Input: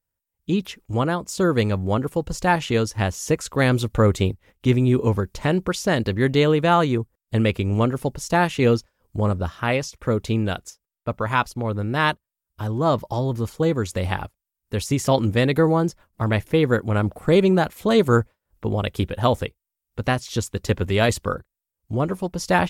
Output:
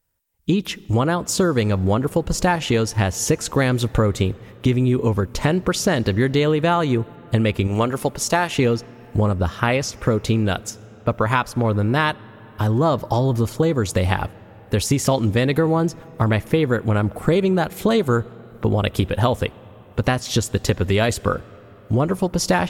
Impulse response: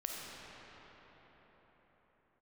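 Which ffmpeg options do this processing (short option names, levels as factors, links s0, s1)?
-filter_complex "[0:a]asettb=1/sr,asplit=3[s0][s1][s2];[s0]atrim=end=7.674[s3];[s1]atrim=start=7.67:end=8.55,asetpts=PTS-STARTPTS,afade=t=in:d=0.004:c=qsin,afade=t=out:st=0.876:d=0.004:c=qsin,lowshelf=f=340:g=-10[s4];[s2]atrim=start=8.546[s5];[s3][s4]acrossfade=d=0.004:c1=hsin:c2=qsin[s6];[s6][s5]acrossfade=d=0.004:c1=qsin:c2=hsin,acompressor=threshold=0.0631:ratio=6,asplit=2[s7][s8];[1:a]atrim=start_sample=2205[s9];[s8][s9]afir=irnorm=-1:irlink=0,volume=0.0841[s10];[s7][s10]amix=inputs=2:normalize=0,volume=2.66"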